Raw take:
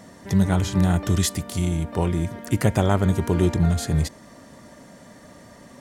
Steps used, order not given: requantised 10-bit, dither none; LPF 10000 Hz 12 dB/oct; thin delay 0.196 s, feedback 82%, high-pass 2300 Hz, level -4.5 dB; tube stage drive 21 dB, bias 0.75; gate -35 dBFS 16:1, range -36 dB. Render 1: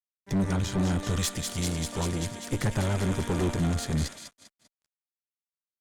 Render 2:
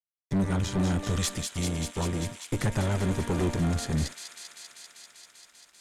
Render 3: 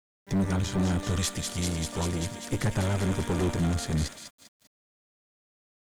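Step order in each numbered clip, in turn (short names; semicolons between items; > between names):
thin delay > gate > requantised > LPF > tube stage; tube stage > gate > thin delay > requantised > LPF; thin delay > gate > tube stage > LPF > requantised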